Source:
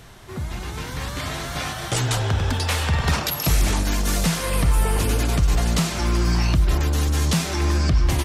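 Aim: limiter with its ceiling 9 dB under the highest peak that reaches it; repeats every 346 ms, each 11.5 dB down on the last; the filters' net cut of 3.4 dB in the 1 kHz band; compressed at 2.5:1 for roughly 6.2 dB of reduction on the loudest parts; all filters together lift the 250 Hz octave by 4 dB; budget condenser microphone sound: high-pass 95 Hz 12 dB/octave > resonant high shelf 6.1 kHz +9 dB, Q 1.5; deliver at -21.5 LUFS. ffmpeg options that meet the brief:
-af "equalizer=f=250:t=o:g=6.5,equalizer=f=1000:t=o:g=-4.5,acompressor=threshold=0.0708:ratio=2.5,alimiter=limit=0.0944:level=0:latency=1,highpass=95,highshelf=f=6100:t=q:w=1.5:g=9,aecho=1:1:346|692|1038:0.266|0.0718|0.0194,volume=2.11"

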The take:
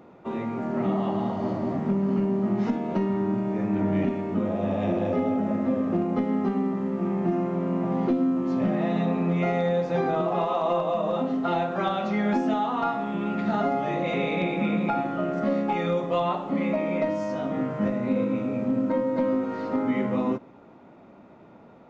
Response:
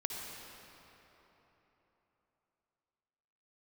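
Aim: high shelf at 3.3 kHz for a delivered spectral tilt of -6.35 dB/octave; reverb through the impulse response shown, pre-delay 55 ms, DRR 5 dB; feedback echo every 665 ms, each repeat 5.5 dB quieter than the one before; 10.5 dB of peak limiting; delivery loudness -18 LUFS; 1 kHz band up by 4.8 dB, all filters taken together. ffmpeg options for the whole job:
-filter_complex "[0:a]equalizer=f=1000:t=o:g=6,highshelf=f=3300:g=5.5,alimiter=limit=0.0891:level=0:latency=1,aecho=1:1:665|1330|1995|2660|3325|3990|4655:0.531|0.281|0.149|0.079|0.0419|0.0222|0.0118,asplit=2[s0][s1];[1:a]atrim=start_sample=2205,adelay=55[s2];[s1][s2]afir=irnorm=-1:irlink=0,volume=0.447[s3];[s0][s3]amix=inputs=2:normalize=0,volume=2.82"

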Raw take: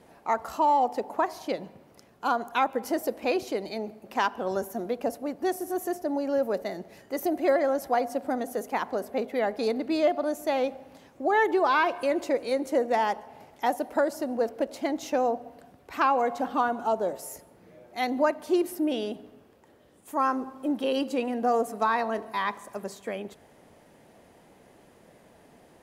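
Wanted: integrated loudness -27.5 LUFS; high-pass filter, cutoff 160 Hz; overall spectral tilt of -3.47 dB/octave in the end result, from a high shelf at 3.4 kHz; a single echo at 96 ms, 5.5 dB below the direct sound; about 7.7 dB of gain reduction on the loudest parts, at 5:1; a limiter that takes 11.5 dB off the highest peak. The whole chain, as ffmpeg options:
-af "highpass=160,highshelf=f=3400:g=5.5,acompressor=threshold=0.0447:ratio=5,alimiter=level_in=1.5:limit=0.0631:level=0:latency=1,volume=0.668,aecho=1:1:96:0.531,volume=2.66"

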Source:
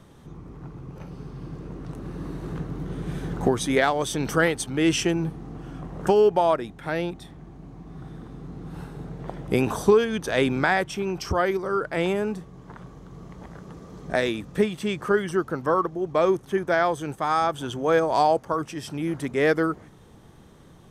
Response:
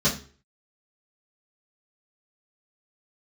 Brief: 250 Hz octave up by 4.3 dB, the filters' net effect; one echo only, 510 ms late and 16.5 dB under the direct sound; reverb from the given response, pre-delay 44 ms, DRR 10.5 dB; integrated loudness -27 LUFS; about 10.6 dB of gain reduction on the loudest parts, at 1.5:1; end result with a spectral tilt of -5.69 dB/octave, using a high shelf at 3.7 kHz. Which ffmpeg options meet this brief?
-filter_complex "[0:a]equalizer=f=250:t=o:g=6,highshelf=f=3700:g=5,acompressor=threshold=0.00891:ratio=1.5,aecho=1:1:510:0.15,asplit=2[s0][s1];[1:a]atrim=start_sample=2205,adelay=44[s2];[s1][s2]afir=irnorm=-1:irlink=0,volume=0.0631[s3];[s0][s3]amix=inputs=2:normalize=0,volume=1.5"

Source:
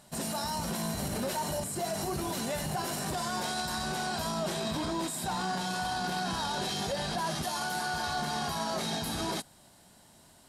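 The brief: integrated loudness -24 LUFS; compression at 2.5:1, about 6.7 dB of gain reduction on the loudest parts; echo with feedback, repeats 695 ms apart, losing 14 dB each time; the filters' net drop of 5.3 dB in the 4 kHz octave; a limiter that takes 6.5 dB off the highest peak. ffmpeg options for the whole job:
-af "equalizer=f=4000:t=o:g=-6.5,acompressor=threshold=0.01:ratio=2.5,alimiter=level_in=3.76:limit=0.0631:level=0:latency=1,volume=0.266,aecho=1:1:695|1390:0.2|0.0399,volume=9.44"

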